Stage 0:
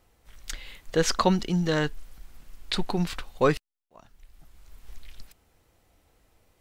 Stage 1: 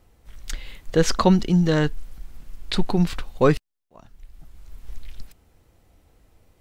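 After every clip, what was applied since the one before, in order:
low-shelf EQ 420 Hz +7.5 dB
level +1 dB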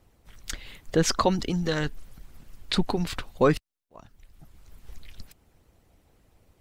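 harmonic and percussive parts rebalanced harmonic −12 dB
in parallel at +0.5 dB: brickwall limiter −17.5 dBFS, peak gain reduction 11 dB
on the sum: level −4.5 dB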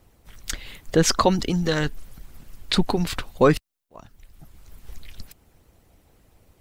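high-shelf EQ 10,000 Hz +5 dB
level +4 dB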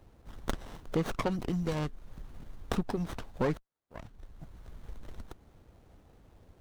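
downward compressor 2 to 1, threshold −36 dBFS, peak gain reduction 13.5 dB
windowed peak hold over 17 samples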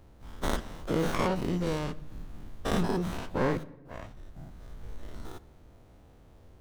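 every bin's largest magnitude spread in time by 120 ms
on a send at −16 dB: convolution reverb RT60 0.95 s, pre-delay 3 ms
on the sum: level −2.5 dB

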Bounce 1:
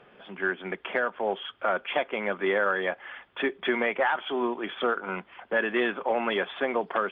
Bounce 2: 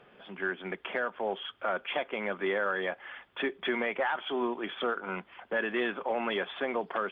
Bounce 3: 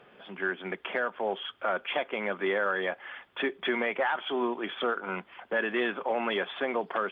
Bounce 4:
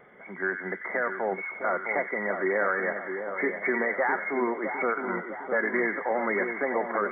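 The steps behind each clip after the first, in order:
bass and treble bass +1 dB, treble +4 dB; in parallel at −1 dB: brickwall limiter −20.5 dBFS, peak gain reduction 7.5 dB; on the sum: level −8.5 dB
low-shelf EQ 93 Hz −6.5 dB; level +2 dB
hearing-aid frequency compression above 1,900 Hz 4 to 1; pitch vibrato 4.4 Hz 33 cents; echo with a time of its own for lows and highs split 1,300 Hz, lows 658 ms, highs 91 ms, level −7 dB; level +1.5 dB

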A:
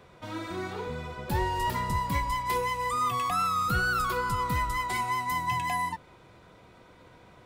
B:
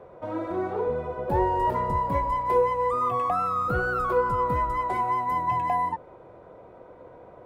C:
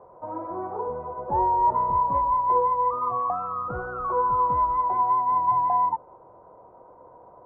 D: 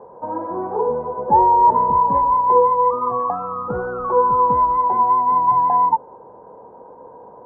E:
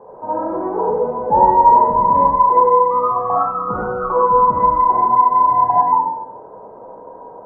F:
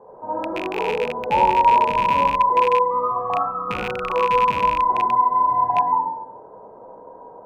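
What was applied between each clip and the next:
drawn EQ curve 210 Hz 0 dB, 550 Hz +13 dB, 4,100 Hz −16 dB
low-pass with resonance 980 Hz, resonance Q 3.8; level −7 dB
hollow resonant body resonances 230/440/850/1,600 Hz, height 13 dB, ringing for 25 ms
comb and all-pass reverb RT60 0.68 s, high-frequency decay 0.55×, pre-delay 15 ms, DRR −5.5 dB; level −1.5 dB
loose part that buzzes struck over −29 dBFS, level −11 dBFS; level −5 dB

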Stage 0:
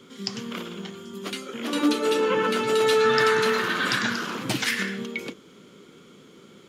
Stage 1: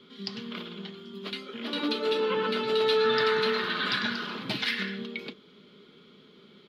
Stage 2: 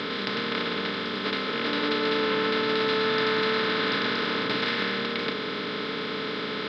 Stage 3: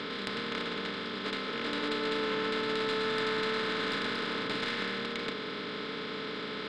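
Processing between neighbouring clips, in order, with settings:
high shelf with overshoot 5,400 Hz −10 dB, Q 3; comb filter 4.8 ms, depth 39%; level −6.5 dB
compressor on every frequency bin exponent 0.2; high-frequency loss of the air 99 metres; level −4 dB
stylus tracing distortion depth 0.028 ms; level −6.5 dB

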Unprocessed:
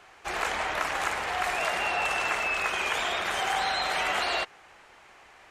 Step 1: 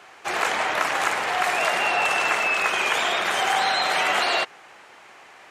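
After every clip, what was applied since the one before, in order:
high-pass filter 150 Hz 12 dB per octave
level +6 dB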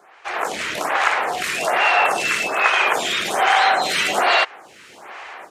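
automatic gain control gain up to 13.5 dB
phaser with staggered stages 1.2 Hz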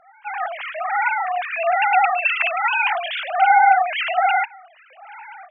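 three sine waves on the formant tracks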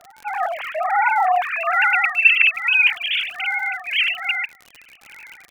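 high-pass filter sweep 470 Hz → 2,600 Hz, 0:00.91–0:02.31
surface crackle 73 per second −29 dBFS

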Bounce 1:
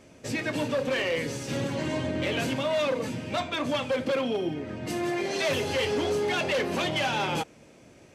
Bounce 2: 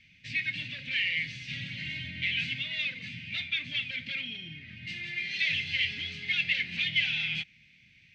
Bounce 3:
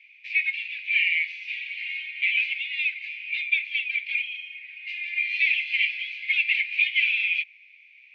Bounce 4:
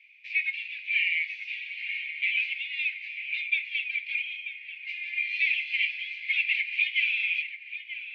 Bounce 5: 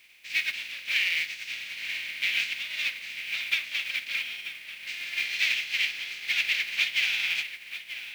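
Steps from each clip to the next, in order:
drawn EQ curve 180 Hz 0 dB, 390 Hz −26 dB, 1,100 Hz −26 dB, 2,100 Hz +14 dB, 3,900 Hz +9 dB, 11,000 Hz −27 dB; level −8 dB
four-pole ladder band-pass 2,500 Hz, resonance 80%; level +7.5 dB
feedback echo with a low-pass in the loop 936 ms, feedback 52%, low-pass 2,100 Hz, level −8.5 dB; level −3.5 dB
compressing power law on the bin magnitudes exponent 0.44

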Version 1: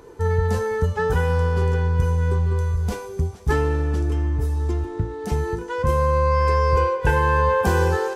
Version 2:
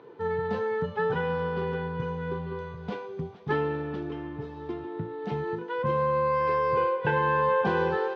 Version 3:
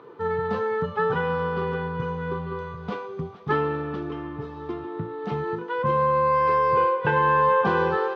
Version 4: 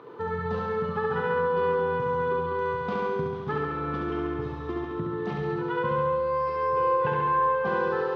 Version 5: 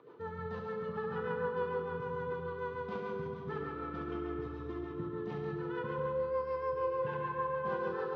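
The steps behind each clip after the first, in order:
elliptic band-pass filter 140–3,600 Hz, stop band 50 dB; level −4 dB
parametric band 1,200 Hz +11.5 dB 0.26 octaves; level +2.5 dB
downward compressor, threshold −28 dBFS, peak gain reduction 11 dB; flutter between parallel walls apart 11.8 metres, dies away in 1.4 s
rotating-speaker cabinet horn 6.7 Hz; comb and all-pass reverb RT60 2.9 s, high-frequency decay 0.35×, pre-delay 35 ms, DRR 5 dB; level −9 dB

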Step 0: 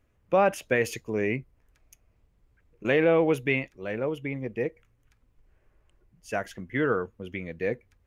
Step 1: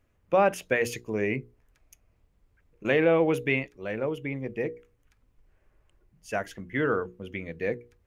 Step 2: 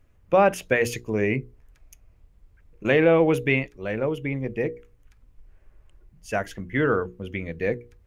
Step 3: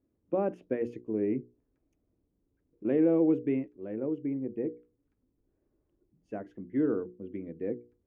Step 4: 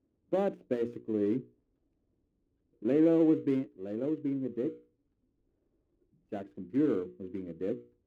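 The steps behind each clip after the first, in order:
mains-hum notches 60/120/180/240/300/360/420/480 Hz
low-shelf EQ 88 Hz +10 dB; level +3.5 dB
resonant band-pass 300 Hz, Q 2.8
running median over 25 samples

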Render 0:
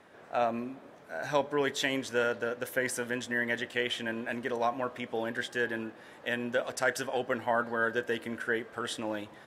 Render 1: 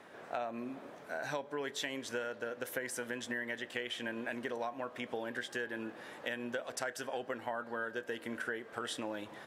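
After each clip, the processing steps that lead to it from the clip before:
low-shelf EQ 84 Hz −12 dB
downward compressor 6 to 1, threshold −38 dBFS, peak gain reduction 15 dB
level +2.5 dB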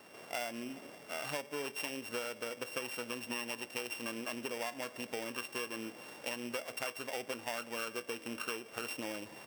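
samples sorted by size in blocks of 16 samples
level −1 dB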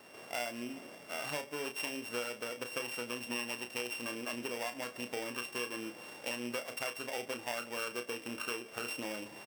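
double-tracking delay 33 ms −8.5 dB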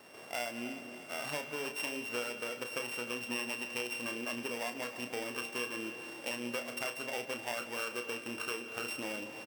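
repeating echo 307 ms, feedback 55%, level −14 dB
on a send at −12.5 dB: convolution reverb RT60 1.2 s, pre-delay 146 ms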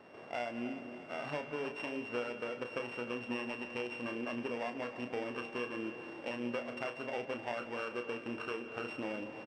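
head-to-tape spacing loss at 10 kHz 29 dB
level +3 dB

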